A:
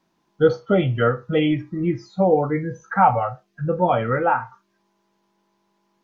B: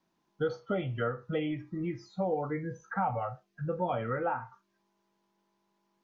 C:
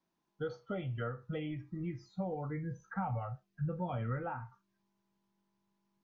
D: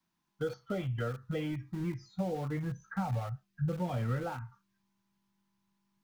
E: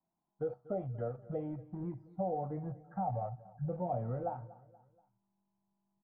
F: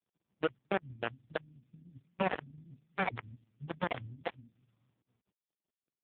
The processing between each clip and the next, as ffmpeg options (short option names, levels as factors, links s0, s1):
-filter_complex "[0:a]acrossover=split=620|1600[s0][s1][s2];[s0]acompressor=threshold=0.0631:ratio=4[s3];[s1]acompressor=threshold=0.0501:ratio=4[s4];[s2]acompressor=threshold=0.0112:ratio=4[s5];[s3][s4][s5]amix=inputs=3:normalize=0,volume=0.398"
-af "asubboost=boost=4.5:cutoff=200,volume=0.447"
-filter_complex "[0:a]acrossover=split=300|790|1400[s0][s1][s2][s3];[s1]aeval=exprs='val(0)*gte(abs(val(0)),0.00299)':c=same[s4];[s2]acompressor=threshold=0.00158:ratio=6[s5];[s0][s4][s5][s3]amix=inputs=4:normalize=0,volume=1.58"
-af "lowpass=f=710:t=q:w=4.4,aecho=1:1:239|478|717:0.106|0.0477|0.0214,volume=0.501"
-filter_complex "[0:a]acrossover=split=120[s0][s1];[s1]acrusher=bits=4:mix=0:aa=0.000001[s2];[s0][s2]amix=inputs=2:normalize=0,volume=1.68" -ar 8000 -c:a libopencore_amrnb -b:a 4750